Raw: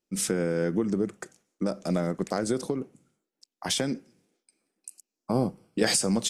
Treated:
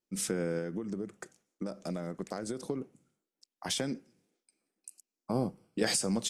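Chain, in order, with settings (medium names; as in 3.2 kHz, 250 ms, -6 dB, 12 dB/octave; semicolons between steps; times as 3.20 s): 0.58–2.70 s: compression, threshold -27 dBFS, peak gain reduction 7 dB; trim -5.5 dB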